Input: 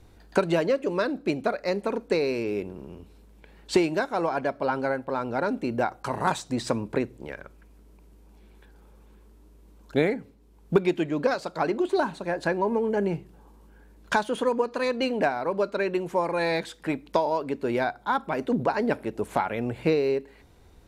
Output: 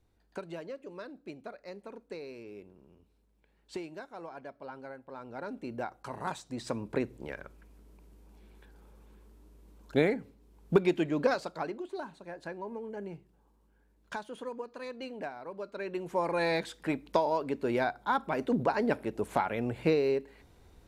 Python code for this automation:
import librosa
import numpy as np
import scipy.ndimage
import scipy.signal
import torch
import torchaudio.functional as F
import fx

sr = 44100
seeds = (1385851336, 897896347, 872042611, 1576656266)

y = fx.gain(x, sr, db=fx.line((4.97, -18.0), (5.68, -11.0), (6.51, -11.0), (7.13, -3.0), (11.37, -3.0), (11.84, -15.0), (15.61, -15.0), (16.28, -3.5)))